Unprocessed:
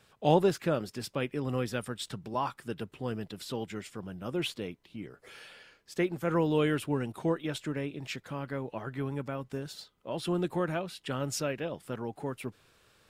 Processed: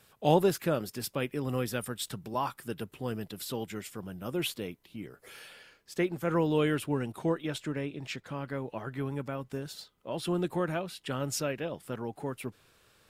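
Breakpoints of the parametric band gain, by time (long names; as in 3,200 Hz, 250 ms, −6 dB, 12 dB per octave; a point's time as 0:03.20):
parametric band 13,000 Hz 0.81 octaves
0:05.36 +13 dB
0:05.97 +3.5 dB
0:07.29 +3.5 dB
0:08.26 −4.5 dB
0:08.58 +4.5 dB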